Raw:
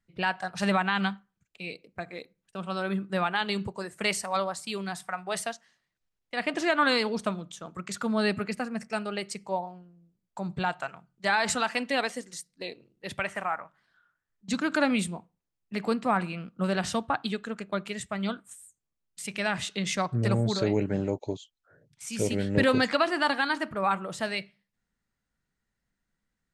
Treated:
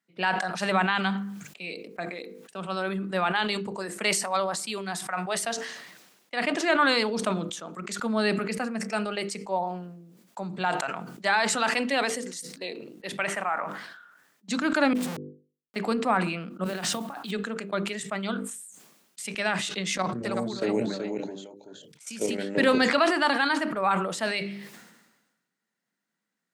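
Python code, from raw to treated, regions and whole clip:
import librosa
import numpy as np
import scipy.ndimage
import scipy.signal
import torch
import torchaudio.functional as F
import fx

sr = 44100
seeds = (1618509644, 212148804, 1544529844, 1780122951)

y = fx.chain(x, sr, fx.tube_stage(drive_db=43.0, bias=0.75),
    fx.peak_eq(hz=810.0, db=-8.0, octaves=2.2),
    fx.schmitt(flips_db=-46.5), at=(14.93, 15.76))
y = fx.chain(y, sr, fx.over_compress(threshold_db=-34.0, ratio=-0.5),
    fx.mod_noise(seeds[0], snr_db=22), at=(16.64, 17.31))
y = fx.chain(y, sr, fx.level_steps(step_db=13),
    fx.echo_single(ms=377, db=-6.0), at=(19.96, 22.38))
y = scipy.signal.sosfilt(scipy.signal.butter(4, 190.0, 'highpass', fs=sr, output='sos'), y)
y = fx.hum_notches(y, sr, base_hz=50, count=10)
y = fx.sustainer(y, sr, db_per_s=50.0)
y = F.gain(torch.from_numpy(y), 1.5).numpy()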